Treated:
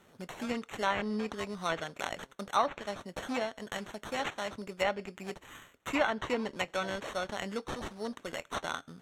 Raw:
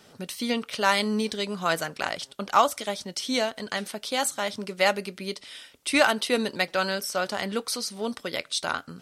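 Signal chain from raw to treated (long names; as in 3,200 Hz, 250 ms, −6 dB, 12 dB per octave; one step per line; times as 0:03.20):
sample-rate reduction 4,900 Hz, jitter 0%
treble cut that deepens with the level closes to 2,500 Hz, closed at −18 dBFS
level −7.5 dB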